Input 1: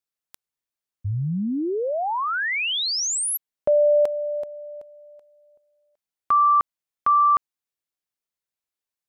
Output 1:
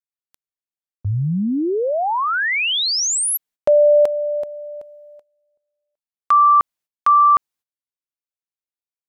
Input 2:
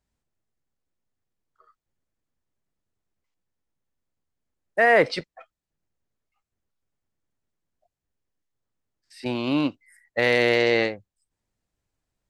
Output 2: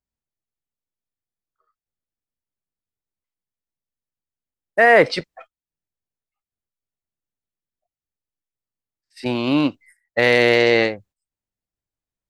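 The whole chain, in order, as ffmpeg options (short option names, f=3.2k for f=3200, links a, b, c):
-af "agate=range=-16dB:threshold=-48dB:ratio=16:release=284:detection=peak,volume=5dB"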